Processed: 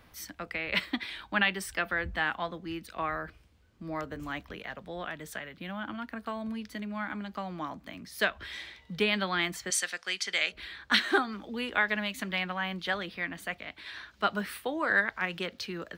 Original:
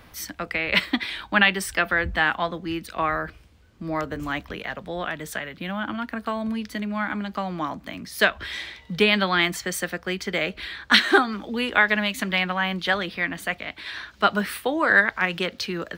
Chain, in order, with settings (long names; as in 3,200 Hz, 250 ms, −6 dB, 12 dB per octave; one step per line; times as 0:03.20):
0:09.70–0:10.52: meter weighting curve ITU-R 468
level −8.5 dB